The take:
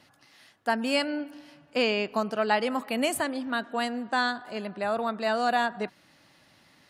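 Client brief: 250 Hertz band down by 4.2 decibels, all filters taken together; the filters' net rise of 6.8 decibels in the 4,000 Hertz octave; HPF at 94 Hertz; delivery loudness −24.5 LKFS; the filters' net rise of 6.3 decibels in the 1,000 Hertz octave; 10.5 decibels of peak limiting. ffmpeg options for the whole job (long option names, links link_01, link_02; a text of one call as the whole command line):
ffmpeg -i in.wav -af "highpass=94,equalizer=frequency=250:width_type=o:gain=-5,equalizer=frequency=1000:width_type=o:gain=8.5,equalizer=frequency=4000:width_type=o:gain=8.5,volume=3.5dB,alimiter=limit=-12.5dB:level=0:latency=1" out.wav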